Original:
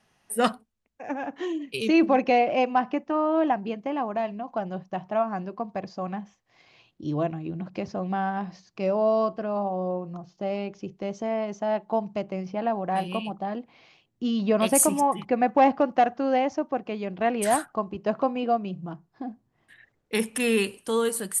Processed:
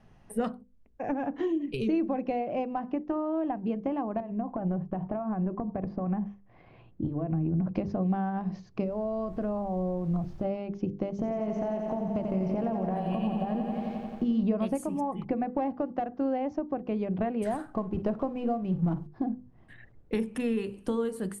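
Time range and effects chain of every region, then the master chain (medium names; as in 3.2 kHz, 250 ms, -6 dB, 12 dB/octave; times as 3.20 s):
4.20–7.75 s: low-pass 2.1 kHz + compression 10:1, threshold -34 dBFS
8.83–10.44 s: compression 2:1, threshold -38 dBFS + added noise pink -62 dBFS
11.10–14.43 s: compression 3:1, threshold -29 dBFS + bit-crushed delay 88 ms, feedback 80%, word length 10-bit, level -6 dB
17.53–19.07 s: companding laws mixed up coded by mu + flutter echo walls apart 8.8 m, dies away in 0.2 s
whole clip: compression 6:1, threshold -35 dBFS; tilt EQ -4 dB/octave; hum notches 50/100/150/200/250/300/350/400/450/500 Hz; trim +3 dB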